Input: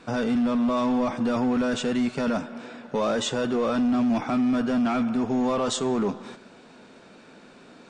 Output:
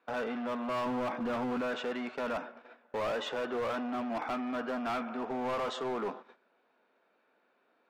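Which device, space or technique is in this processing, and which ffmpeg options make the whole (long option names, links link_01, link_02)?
walkie-talkie: -filter_complex "[0:a]asettb=1/sr,asplit=3[link_01][link_02][link_03];[link_01]atrim=end=0.864[link_04];[link_02]atrim=start=0.86:end=1.61,asetpts=PTS-STARTPTS,afade=type=in:duration=0.004:curve=qsin,afade=type=out:start_time=0.746:duration=0.004:curve=qsin,bass=frequency=250:gain=11,treble=frequency=4000:gain=-3[link_05];[link_03]atrim=start=1.606[link_06];[link_04][link_05]acrossfade=duration=0.004:curve1=hsin:curve2=qsin[link_07];[link_07][link_06]acrossfade=duration=0.004:curve1=qsin:curve2=hsin,highpass=500,lowpass=2300,asoftclip=type=hard:threshold=-28dB,agate=range=-16dB:threshold=-42dB:ratio=16:detection=peak,volume=-2dB"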